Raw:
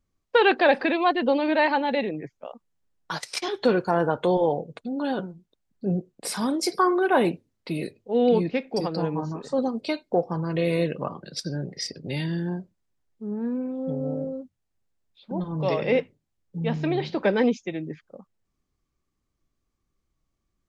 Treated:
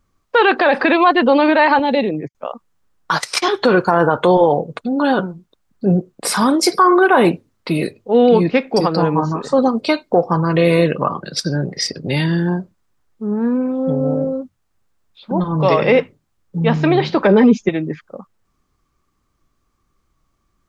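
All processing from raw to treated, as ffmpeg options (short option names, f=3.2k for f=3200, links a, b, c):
-filter_complex "[0:a]asettb=1/sr,asplit=3[a][b][c];[a]atrim=end=1.794[d];[b]atrim=start=1.79:end=2.35,asetpts=PTS-STARTPTS,afade=t=in:d=0.004:c=qsin,afade=t=out:st=0.556:d=0.004:c=qsin,agate=range=-26dB:threshold=-39dB:ratio=16:release=100:detection=peak,highpass=41,equalizer=f=1.4k:t=o:w=1.5:g=-12[e];[c]atrim=start=2.346[f];[d][e]acrossfade=d=0.004:c1=hsin:c2=qsin[g];[g][f]acrossfade=d=0.004:c1=qsin:c2=hsin,asettb=1/sr,asplit=3[h][i][j];[h]atrim=end=17.274[k];[i]atrim=start=17.27:end=17.69,asetpts=PTS-STARTPTS,afade=t=in:d=0.004:c=qsin,afade=t=out:st=0.416:d=0.004:c=qsin,tiltshelf=f=1.2k:g=5.5,aecho=1:1:4.9:0.92,atrim=end_sample=18522[l];[j]atrim=start=17.686[m];[k][l]acrossfade=d=0.004:c1=hsin:c2=qsin[n];[n][m]acrossfade=d=0.004:c1=qsin:c2=hsin,equalizer=f=1.2k:w=1.7:g=7.5,alimiter=level_in=13dB:limit=-1dB:release=50:level=0:latency=1,volume=-2.5dB"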